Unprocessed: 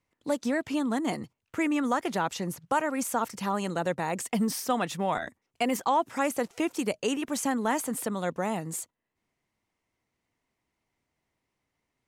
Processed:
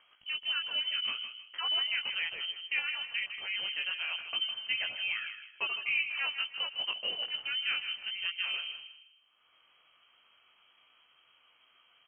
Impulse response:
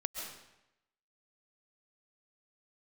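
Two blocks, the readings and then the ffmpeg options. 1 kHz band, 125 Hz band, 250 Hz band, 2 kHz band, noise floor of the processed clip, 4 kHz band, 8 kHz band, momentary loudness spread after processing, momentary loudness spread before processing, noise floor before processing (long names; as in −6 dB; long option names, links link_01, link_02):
−18.0 dB, below −30 dB, below −35 dB, +3.0 dB, −67 dBFS, +12.0 dB, below −40 dB, 6 LU, 6 LU, −83 dBFS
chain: -filter_complex "[0:a]acompressor=mode=upward:threshold=-40dB:ratio=2.5,flanger=delay=16.5:depth=3.9:speed=1.2,asplit=2[link_01][link_02];[link_02]adelay=157,lowpass=frequency=1700:poles=1,volume=-7.5dB,asplit=2[link_03][link_04];[link_04]adelay=157,lowpass=frequency=1700:poles=1,volume=0.35,asplit=2[link_05][link_06];[link_06]adelay=157,lowpass=frequency=1700:poles=1,volume=0.35,asplit=2[link_07][link_08];[link_08]adelay=157,lowpass=frequency=1700:poles=1,volume=0.35[link_09];[link_01][link_03][link_05][link_07][link_09]amix=inputs=5:normalize=0,asplit=2[link_10][link_11];[1:a]atrim=start_sample=2205[link_12];[link_11][link_12]afir=irnorm=-1:irlink=0,volume=-18dB[link_13];[link_10][link_13]amix=inputs=2:normalize=0,lowpass=frequency=2800:width_type=q:width=0.5098,lowpass=frequency=2800:width_type=q:width=0.6013,lowpass=frequency=2800:width_type=q:width=0.9,lowpass=frequency=2800:width_type=q:width=2.563,afreqshift=-3300,volume=-4.5dB"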